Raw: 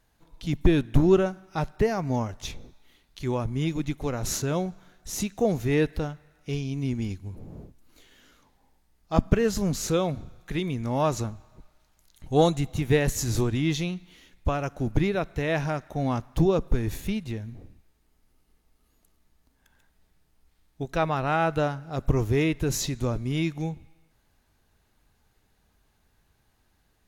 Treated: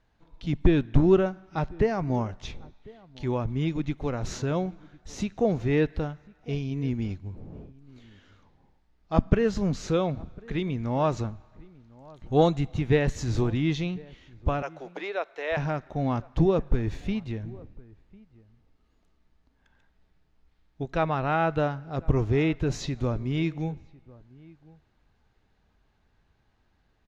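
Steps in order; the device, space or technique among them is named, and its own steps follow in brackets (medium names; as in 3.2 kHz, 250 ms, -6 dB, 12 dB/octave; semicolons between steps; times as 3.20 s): 14.62–15.57 s: high-pass 460 Hz 24 dB/octave; shout across a valley (distance through air 150 m; echo from a far wall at 180 m, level -23 dB)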